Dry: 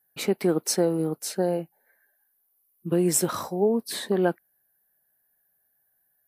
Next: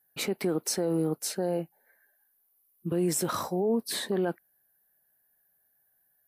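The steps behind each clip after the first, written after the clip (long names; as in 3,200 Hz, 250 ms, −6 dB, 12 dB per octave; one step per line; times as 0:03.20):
brickwall limiter −19.5 dBFS, peak gain reduction 9.5 dB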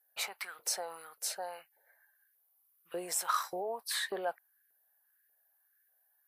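parametric band 310 Hz −14 dB 1.2 octaves
auto-filter high-pass saw up 1.7 Hz 410–2,000 Hz
level −3 dB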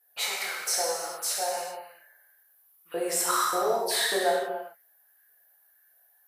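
in parallel at +1 dB: brickwall limiter −27.5 dBFS, peak gain reduction 9 dB
on the sum: reverb whose tail is shaped and stops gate 450 ms falling, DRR −5.5 dB
level −2.5 dB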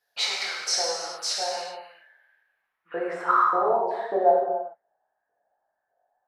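low-pass filter sweep 5,000 Hz → 730 Hz, 0:01.50–0:04.15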